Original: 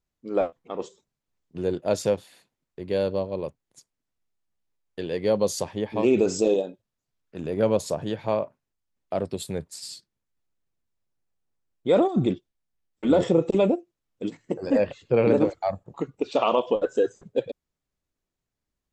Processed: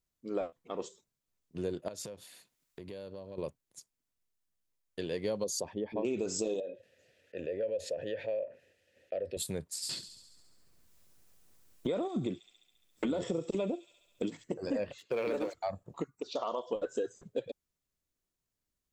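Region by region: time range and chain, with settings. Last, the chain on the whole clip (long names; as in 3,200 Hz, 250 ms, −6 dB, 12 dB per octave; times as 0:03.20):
0:01.88–0:03.38: downward compressor 8 to 1, threshold −36 dBFS + one half of a high-frequency compander encoder only
0:05.44–0:06.05: spectral envelope exaggerated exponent 1.5 + parametric band 110 Hz −7.5 dB 0.72 octaves
0:06.60–0:09.37: formant filter e + parametric band 85 Hz +14 dB 0.75 octaves + envelope flattener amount 50%
0:09.89–0:14.44: delay with a high-pass on its return 69 ms, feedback 60%, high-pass 4,000 Hz, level −8.5 dB + multiband upward and downward compressor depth 70%
0:14.98–0:15.54: meter weighting curve A + leveller curve on the samples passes 1
0:16.04–0:16.73: low-shelf EQ 440 Hz −11 dB + phaser swept by the level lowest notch 480 Hz, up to 2,500 Hz, full sweep at −30 dBFS
whole clip: high-shelf EQ 5,100 Hz +9 dB; notch filter 820 Hz, Q 12; downward compressor 4 to 1, threshold −26 dBFS; level −5 dB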